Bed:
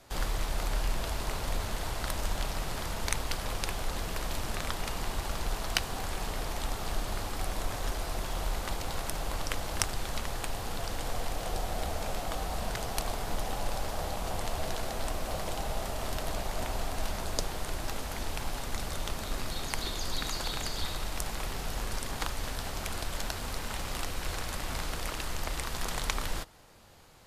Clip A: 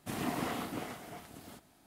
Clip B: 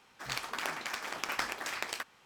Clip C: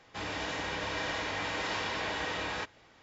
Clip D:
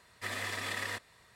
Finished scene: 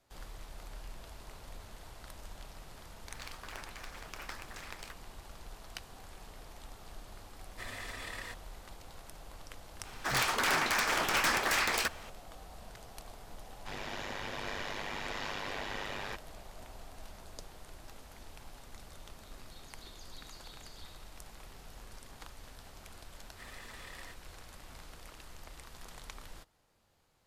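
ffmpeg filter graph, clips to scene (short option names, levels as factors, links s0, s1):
-filter_complex "[2:a]asplit=2[s0][s1];[4:a]asplit=2[s2][s3];[0:a]volume=0.158[s4];[s1]aeval=exprs='0.188*sin(PI/2*7.08*val(0)/0.188)':c=same[s5];[3:a]aeval=exprs='val(0)*sin(2*PI*50*n/s)':c=same[s6];[s3]highpass=150[s7];[s0]atrim=end=2.25,asetpts=PTS-STARTPTS,volume=0.282,afade=t=in:d=0.004:c=hsin,afade=t=out:st=2.246:d=0.004:c=hsin,adelay=2900[s8];[s2]atrim=end=1.35,asetpts=PTS-STARTPTS,volume=0.447,afade=t=in:d=0.004:c=hsin,afade=t=out:st=1.346:d=0.004:c=hsin,adelay=7360[s9];[s5]atrim=end=2.25,asetpts=PTS-STARTPTS,volume=0.335,afade=t=in:d=0.004:c=hsin,afade=t=out:st=2.246:d=0.004:c=hsin,adelay=9850[s10];[s6]atrim=end=3.02,asetpts=PTS-STARTPTS,volume=0.75,afade=t=in:d=0.004:c=hsin,afade=t=out:st=3.016:d=0.004:c=hsin,adelay=13510[s11];[s7]atrim=end=1.35,asetpts=PTS-STARTPTS,volume=0.2,afade=t=in:d=0.004:c=hsin,afade=t=out:st=1.346:d=0.004:c=hsin,adelay=23160[s12];[s4][s8][s9][s10][s11][s12]amix=inputs=6:normalize=0"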